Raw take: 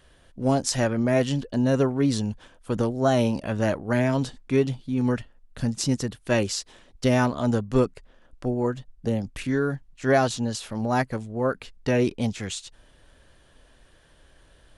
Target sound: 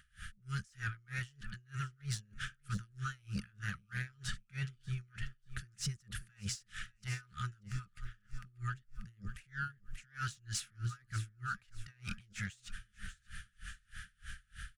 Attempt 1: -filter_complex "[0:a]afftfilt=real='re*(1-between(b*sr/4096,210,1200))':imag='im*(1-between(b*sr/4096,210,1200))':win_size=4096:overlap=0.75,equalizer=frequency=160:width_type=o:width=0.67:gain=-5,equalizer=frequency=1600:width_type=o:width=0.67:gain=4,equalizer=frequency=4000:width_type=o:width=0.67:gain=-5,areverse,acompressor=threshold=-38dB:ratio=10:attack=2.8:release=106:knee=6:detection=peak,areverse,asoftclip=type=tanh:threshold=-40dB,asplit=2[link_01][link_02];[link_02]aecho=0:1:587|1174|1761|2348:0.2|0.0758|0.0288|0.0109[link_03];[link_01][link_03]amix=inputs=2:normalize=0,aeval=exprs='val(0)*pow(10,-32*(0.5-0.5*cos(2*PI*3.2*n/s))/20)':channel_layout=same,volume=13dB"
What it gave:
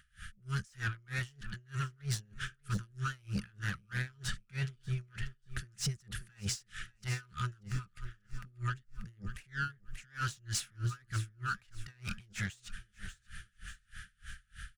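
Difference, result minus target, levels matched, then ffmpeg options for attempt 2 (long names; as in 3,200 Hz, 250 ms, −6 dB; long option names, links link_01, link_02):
downward compressor: peak gain reduction −5.5 dB
-filter_complex "[0:a]afftfilt=real='re*(1-between(b*sr/4096,210,1200))':imag='im*(1-between(b*sr/4096,210,1200))':win_size=4096:overlap=0.75,equalizer=frequency=160:width_type=o:width=0.67:gain=-5,equalizer=frequency=1600:width_type=o:width=0.67:gain=4,equalizer=frequency=4000:width_type=o:width=0.67:gain=-5,areverse,acompressor=threshold=-44dB:ratio=10:attack=2.8:release=106:knee=6:detection=peak,areverse,asoftclip=type=tanh:threshold=-40dB,asplit=2[link_01][link_02];[link_02]aecho=0:1:587|1174|1761|2348:0.2|0.0758|0.0288|0.0109[link_03];[link_01][link_03]amix=inputs=2:normalize=0,aeval=exprs='val(0)*pow(10,-32*(0.5-0.5*cos(2*PI*3.2*n/s))/20)':channel_layout=same,volume=13dB"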